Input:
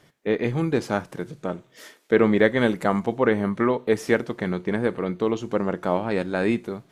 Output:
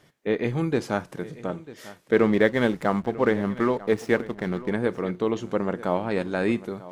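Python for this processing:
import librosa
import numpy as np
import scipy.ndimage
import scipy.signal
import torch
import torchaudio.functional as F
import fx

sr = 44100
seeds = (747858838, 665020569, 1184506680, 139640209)

y = fx.backlash(x, sr, play_db=-35.0, at=(2.13, 4.7))
y = y + 10.0 ** (-18.0 / 20.0) * np.pad(y, (int(945 * sr / 1000.0), 0))[:len(y)]
y = y * librosa.db_to_amplitude(-1.5)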